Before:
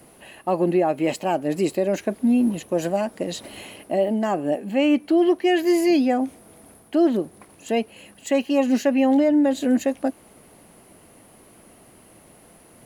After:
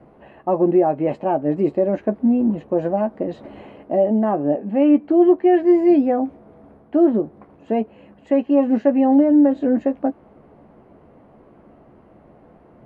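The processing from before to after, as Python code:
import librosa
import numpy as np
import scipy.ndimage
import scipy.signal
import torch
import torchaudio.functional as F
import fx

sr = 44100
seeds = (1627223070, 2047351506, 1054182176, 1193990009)

y = scipy.signal.sosfilt(scipy.signal.butter(2, 1100.0, 'lowpass', fs=sr, output='sos'), x)
y = fx.doubler(y, sr, ms=14.0, db=-9)
y = y * librosa.db_to_amplitude(3.0)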